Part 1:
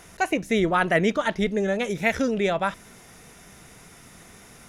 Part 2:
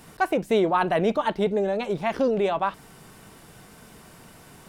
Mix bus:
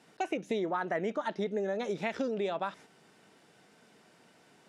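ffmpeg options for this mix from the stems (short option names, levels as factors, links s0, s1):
-filter_complex "[0:a]volume=0.668[s0];[1:a]equalizer=f=1100:w=4.5:g=-6.5,agate=range=0.501:threshold=0.00631:ratio=16:detection=peak,volume=0.631,asplit=2[s1][s2];[s2]apad=whole_len=206649[s3];[s0][s3]sidechaingate=range=0.0224:threshold=0.00631:ratio=16:detection=peak[s4];[s4][s1]amix=inputs=2:normalize=0,highpass=230,lowpass=6400,acompressor=threshold=0.0282:ratio=4"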